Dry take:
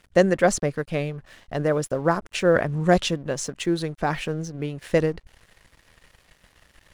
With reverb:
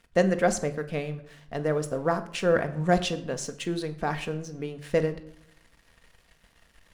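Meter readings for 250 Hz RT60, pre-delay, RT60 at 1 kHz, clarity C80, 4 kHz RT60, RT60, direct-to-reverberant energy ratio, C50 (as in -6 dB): 0.90 s, 4 ms, 0.70 s, 17.0 dB, 0.50 s, 0.75 s, 7.5 dB, 14.5 dB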